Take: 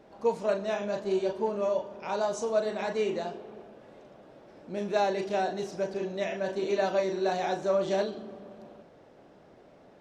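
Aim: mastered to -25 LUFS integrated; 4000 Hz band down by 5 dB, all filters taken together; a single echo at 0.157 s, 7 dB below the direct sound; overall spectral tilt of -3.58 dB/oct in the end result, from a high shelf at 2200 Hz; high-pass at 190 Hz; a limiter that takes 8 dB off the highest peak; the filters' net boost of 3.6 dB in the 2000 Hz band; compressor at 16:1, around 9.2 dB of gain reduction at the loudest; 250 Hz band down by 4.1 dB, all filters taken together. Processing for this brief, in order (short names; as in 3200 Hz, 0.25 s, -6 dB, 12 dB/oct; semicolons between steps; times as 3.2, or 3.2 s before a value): HPF 190 Hz; bell 250 Hz -5 dB; bell 2000 Hz +9 dB; high shelf 2200 Hz -6.5 dB; bell 4000 Hz -3.5 dB; compressor 16:1, threshold -31 dBFS; limiter -30.5 dBFS; echo 0.157 s -7 dB; gain +14 dB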